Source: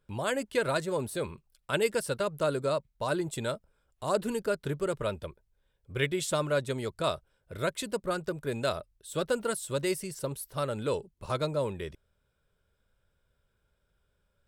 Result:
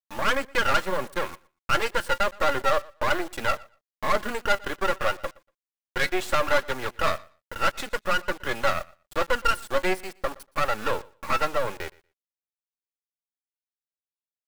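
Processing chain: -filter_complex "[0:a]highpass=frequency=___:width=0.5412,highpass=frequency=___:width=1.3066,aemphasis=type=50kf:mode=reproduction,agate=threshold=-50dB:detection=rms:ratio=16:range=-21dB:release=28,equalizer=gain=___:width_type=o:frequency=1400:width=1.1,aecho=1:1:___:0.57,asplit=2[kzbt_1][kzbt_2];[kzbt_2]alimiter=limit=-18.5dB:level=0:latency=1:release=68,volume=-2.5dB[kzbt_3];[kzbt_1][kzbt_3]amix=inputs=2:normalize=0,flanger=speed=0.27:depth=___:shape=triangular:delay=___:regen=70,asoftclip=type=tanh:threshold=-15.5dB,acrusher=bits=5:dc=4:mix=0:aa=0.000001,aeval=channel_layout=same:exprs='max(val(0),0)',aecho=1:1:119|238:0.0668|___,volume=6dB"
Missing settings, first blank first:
280, 280, 15, 3.6, 1.6, 4.3, 0.0107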